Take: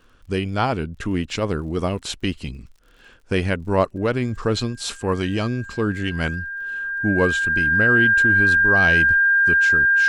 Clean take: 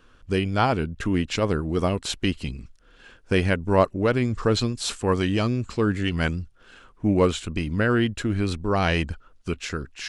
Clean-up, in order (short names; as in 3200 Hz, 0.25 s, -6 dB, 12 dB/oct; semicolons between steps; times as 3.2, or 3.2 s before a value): de-click; notch 1600 Hz, Q 30